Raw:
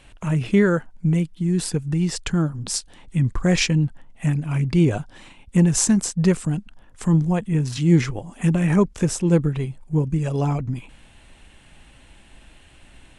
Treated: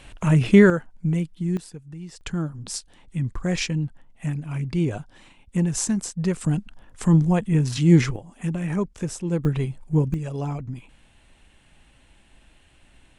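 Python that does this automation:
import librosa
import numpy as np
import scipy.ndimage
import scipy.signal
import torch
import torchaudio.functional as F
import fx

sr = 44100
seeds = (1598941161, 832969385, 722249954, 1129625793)

y = fx.gain(x, sr, db=fx.steps((0.0, 4.0), (0.7, -3.5), (1.57, -16.0), (2.21, -6.0), (6.41, 1.0), (8.16, -7.5), (9.45, 0.5), (10.14, -6.5)))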